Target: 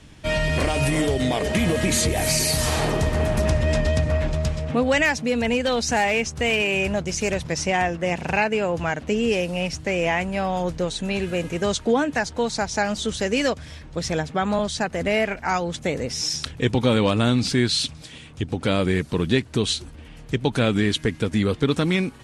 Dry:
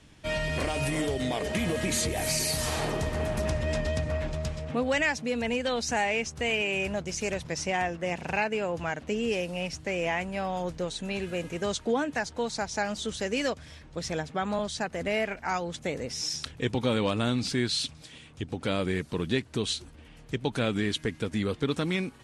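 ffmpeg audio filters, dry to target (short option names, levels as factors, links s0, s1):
-filter_complex "[0:a]lowshelf=f=180:g=3.5,asettb=1/sr,asplit=3[s0][s1][s2];[s0]atrim=end=5.054[s3];[s1]atrim=start=5.05:end=7.52,asetpts=PTS-STARTPTS,afade=t=in:d=0.004:c=qsin,afade=t=out:st=2.466:d=0.004:c=qsin,volume=10.6,asoftclip=hard,volume=0.0944[s4];[s2]atrim=start=7.516[s5];[s3][s4]acrossfade=d=0.004:c1=hsin:c2=qsin[s6];[s6][s5]acrossfade=d=0.004:c1=qsin:c2=hsin,volume=2.11"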